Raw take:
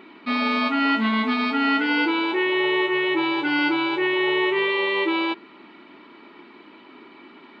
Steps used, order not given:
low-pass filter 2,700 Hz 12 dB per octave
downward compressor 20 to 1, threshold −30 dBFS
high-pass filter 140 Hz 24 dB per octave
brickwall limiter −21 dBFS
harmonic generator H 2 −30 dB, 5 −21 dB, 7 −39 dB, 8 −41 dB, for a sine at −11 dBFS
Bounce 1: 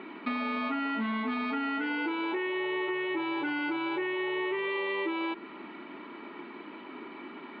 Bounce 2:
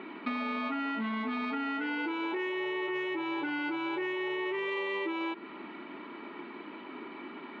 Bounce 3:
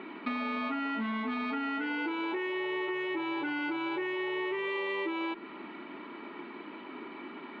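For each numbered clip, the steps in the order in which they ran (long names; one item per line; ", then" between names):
high-pass filter, then brickwall limiter, then downward compressor, then harmonic generator, then low-pass filter
low-pass filter, then brickwall limiter, then harmonic generator, then high-pass filter, then downward compressor
high-pass filter, then brickwall limiter, then low-pass filter, then harmonic generator, then downward compressor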